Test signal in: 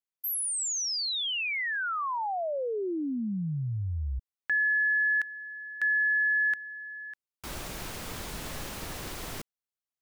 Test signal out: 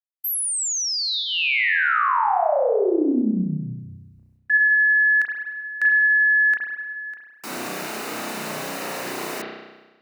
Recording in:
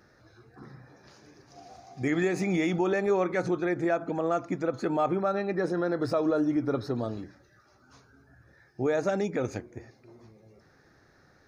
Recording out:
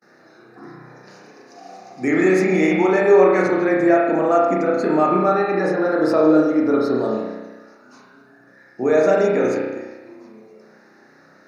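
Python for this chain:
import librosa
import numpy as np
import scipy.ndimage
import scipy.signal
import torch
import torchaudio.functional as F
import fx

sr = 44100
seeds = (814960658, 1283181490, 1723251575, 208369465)

y = scipy.signal.sosfilt(scipy.signal.butter(4, 190.0, 'highpass', fs=sr, output='sos'), x)
y = fx.notch(y, sr, hz=3300.0, q=6.0)
y = fx.gate_hold(y, sr, open_db=-53.0, close_db=-58.0, hold_ms=376.0, range_db=-31, attack_ms=8.9, release_ms=240.0)
y = fx.rev_spring(y, sr, rt60_s=1.2, pass_ms=(32,), chirp_ms=20, drr_db=-3.0)
y = F.gain(torch.from_numpy(y), 6.5).numpy()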